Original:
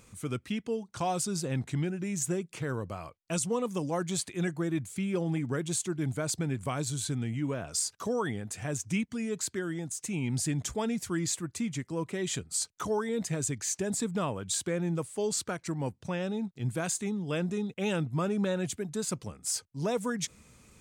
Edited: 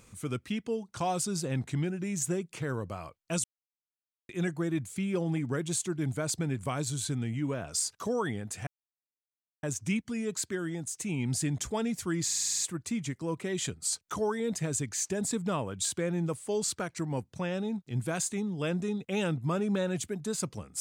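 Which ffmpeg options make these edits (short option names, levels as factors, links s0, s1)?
-filter_complex "[0:a]asplit=11[s0][s1][s2][s3][s4][s5][s6][s7][s8][s9][s10];[s0]atrim=end=3.44,asetpts=PTS-STARTPTS,afade=t=out:st=3.436:d=0.004:c=hsin[s11];[s1]atrim=start=3.44:end=4.29,asetpts=PTS-STARTPTS,volume=0[s12];[s2]atrim=start=4.29:end=8.67,asetpts=PTS-STARTPTS,afade=t=in:d=0.004:c=hsin,afade=t=out:st=4.376:d=0.004:c=hsin,apad=pad_dur=0.96[s13];[s3]atrim=start=8.67:end=11.332,asetpts=PTS-STARTPTS,afade=t=in:d=0.004:c=hsin[s14];[s4]atrim=start=11.278:end=11.332[s15];[s5]atrim=start=11.278:end=11.332[s16];[s6]atrim=start=11.278:end=11.332[s17];[s7]atrim=start=11.278:end=11.332[s18];[s8]atrim=start=11.278:end=11.332[s19];[s9]atrim=start=11.278:end=11.332[s20];[s10]atrim=start=11.278[s21];[s11][s12][s13][s14]concat=n=4:v=0:a=1[s22];[s22][s15]acrossfade=d=0.004:c1=hsin:c2=hsin[s23];[s23][s16]acrossfade=d=0.004:c1=hsin:c2=hsin[s24];[s24][s17]acrossfade=d=0.004:c1=hsin:c2=hsin[s25];[s25][s18]acrossfade=d=0.004:c1=hsin:c2=hsin[s26];[s26][s19]acrossfade=d=0.004:c1=hsin:c2=hsin[s27];[s27][s20]acrossfade=d=0.004:c1=hsin:c2=hsin[s28];[s28][s21]acrossfade=d=0.004:c1=hsin:c2=hsin"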